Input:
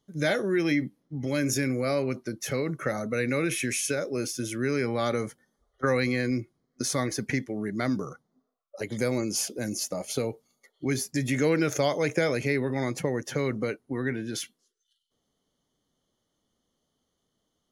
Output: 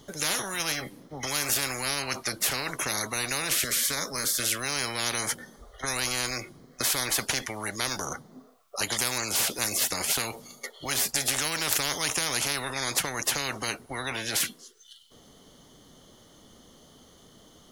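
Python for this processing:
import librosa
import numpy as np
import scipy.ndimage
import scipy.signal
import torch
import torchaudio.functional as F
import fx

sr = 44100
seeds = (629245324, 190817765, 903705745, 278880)

y = fx.fixed_phaser(x, sr, hz=520.0, stages=8, at=(3.64, 4.38))
y = fx.spectral_comp(y, sr, ratio=10.0)
y = F.gain(torch.from_numpy(y), 6.5).numpy()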